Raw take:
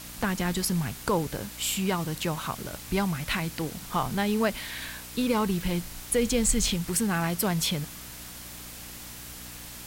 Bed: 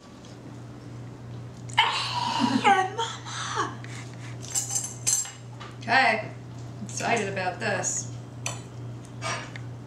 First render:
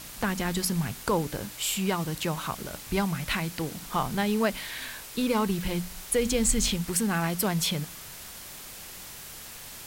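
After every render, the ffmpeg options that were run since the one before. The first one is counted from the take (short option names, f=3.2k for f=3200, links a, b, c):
-af "bandreject=f=60:t=h:w=4,bandreject=f=120:t=h:w=4,bandreject=f=180:t=h:w=4,bandreject=f=240:t=h:w=4,bandreject=f=300:t=h:w=4"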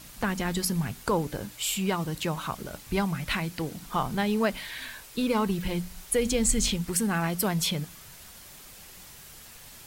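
-af "afftdn=nr=6:nf=-43"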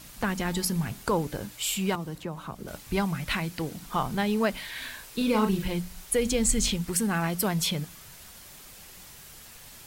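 -filter_complex "[0:a]asplit=3[a][b][c];[a]afade=t=out:st=0.52:d=0.02[d];[b]bandreject=f=67.85:t=h:w=4,bandreject=f=135.7:t=h:w=4,bandreject=f=203.55:t=h:w=4,bandreject=f=271.4:t=h:w=4,bandreject=f=339.25:t=h:w=4,bandreject=f=407.1:t=h:w=4,bandreject=f=474.95:t=h:w=4,bandreject=f=542.8:t=h:w=4,bandreject=f=610.65:t=h:w=4,bandreject=f=678.5:t=h:w=4,bandreject=f=746.35:t=h:w=4,bandreject=f=814.2:t=h:w=4,bandreject=f=882.05:t=h:w=4,bandreject=f=949.9:t=h:w=4,bandreject=f=1.01775k:t=h:w=4,bandreject=f=1.0856k:t=h:w=4,bandreject=f=1.15345k:t=h:w=4,bandreject=f=1.2213k:t=h:w=4,afade=t=in:st=0.52:d=0.02,afade=t=out:st=1.06:d=0.02[e];[c]afade=t=in:st=1.06:d=0.02[f];[d][e][f]amix=inputs=3:normalize=0,asettb=1/sr,asplit=3[g][h][i];[g]atrim=end=1.954[j];[h]atrim=start=1.95:end=2.68,asetpts=PTS-STARTPTS,afade=t=in:d=0.004:c=qsin,afade=t=out:st=0.726:d=0.004:c=qsin,acrossover=split=170|580|1400[k][l][m][n];[k]acompressor=threshold=-43dB:ratio=3[o];[l]acompressor=threshold=-36dB:ratio=3[p];[m]acompressor=threshold=-44dB:ratio=3[q];[n]acompressor=threshold=-53dB:ratio=3[r];[o][p][q][r]amix=inputs=4:normalize=0[s];[i]atrim=start=2.676[t];[j][s]acrossfade=d=0.004:c1=hsin:c2=qsin[u];[u][t]acrossfade=d=0.004:c1=qsin:c2=hsin,asettb=1/sr,asplit=3[v][w][x];[v]atrim=end=4.724[y];[w]atrim=start=4.72:end=5.65,asetpts=PTS-STARTPTS,afade=t=in:d=0.004:c=qsin,afade=t=out:st=0.926:d=0.004:c=qsin,asplit=2[z][aa];[aa]adelay=37,volume=-5dB[ab];[z][ab]amix=inputs=2:normalize=0,atrim=end_sample=41013[ac];[x]atrim=start=5.646[ad];[y][ac]acrossfade=d=0.004:c1=hsin:c2=qsin[ae];[ae][ad]acrossfade=d=0.004:c1=qsin:c2=hsin"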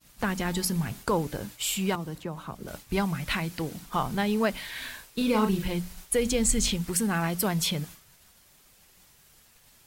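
-af "agate=range=-33dB:threshold=-39dB:ratio=3:detection=peak"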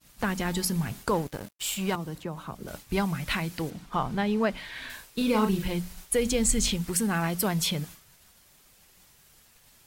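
-filter_complex "[0:a]asettb=1/sr,asplit=3[a][b][c];[a]atrim=end=1.144[d];[b]atrim=start=1.14:end=1.92,asetpts=PTS-STARTPTS,afade=t=in:d=0.004:c=qsin,afade=t=out:st=0.776:d=0.004:c=qsin,aeval=exprs='sgn(val(0))*max(abs(val(0))-0.00944,0)':c=same[e];[c]atrim=start=1.916[f];[d][e]acrossfade=d=0.004:c1=hsin:c2=qsin[g];[g][f]acrossfade=d=0.004:c1=qsin:c2=hsin,asettb=1/sr,asplit=3[h][i][j];[h]atrim=end=3.704[k];[i]atrim=start=3.7:end=4.9,asetpts=PTS-STARTPTS,afade=t=in:d=0.004:c=qsin,afade=t=out:st=1.196:d=0.004:c=qsin,aemphasis=mode=reproduction:type=50kf[l];[j]atrim=start=4.896[m];[k][l]acrossfade=d=0.004:c1=hsin:c2=qsin[n];[n][m]acrossfade=d=0.004:c1=qsin:c2=hsin"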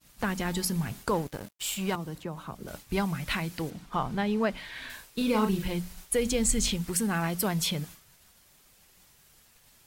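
-af "volume=-1.5dB"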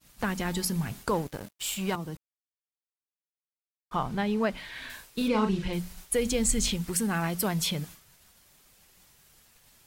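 -filter_complex "[0:a]asettb=1/sr,asplit=3[a][b][c];[a]atrim=end=5.284[d];[b]atrim=start=5.28:end=5.73,asetpts=PTS-STARTPTS,afade=t=in:d=0.004:c=qsin,afade=t=out:st=0.446:d=0.004:c=qsin,lowpass=6.1k[e];[c]atrim=start=5.726[f];[d][e]acrossfade=d=0.004:c1=hsin:c2=qsin[g];[g][f]acrossfade=d=0.004:c1=qsin:c2=hsin,asplit=3[h][i][j];[h]atrim=end=2.17,asetpts=PTS-STARTPTS,afade=t=out:st=2.166:d=0.004:c=hsin[k];[i]atrim=start=2.17:end=3.91,asetpts=PTS-STARTPTS,volume=0[l];[j]atrim=start=3.91,asetpts=PTS-STARTPTS,afade=t=in:d=0.004:c=hsin[m];[k][l][m]concat=n=3:v=0:a=1"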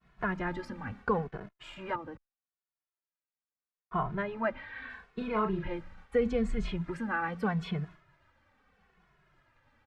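-filter_complex "[0:a]lowpass=f=1.6k:t=q:w=1.5,asplit=2[a][b];[b]adelay=2.3,afreqshift=-0.78[c];[a][c]amix=inputs=2:normalize=1"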